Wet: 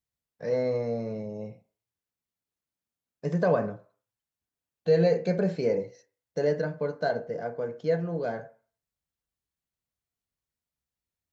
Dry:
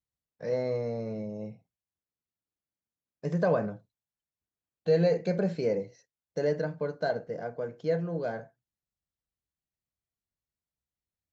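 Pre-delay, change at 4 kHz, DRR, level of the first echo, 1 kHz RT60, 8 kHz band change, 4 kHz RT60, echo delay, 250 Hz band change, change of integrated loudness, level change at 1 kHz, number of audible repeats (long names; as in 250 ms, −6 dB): 3 ms, +1.5 dB, 9.0 dB, no echo audible, 0.55 s, can't be measured, 0.55 s, no echo audible, +1.5 dB, +2.0 dB, +2.5 dB, no echo audible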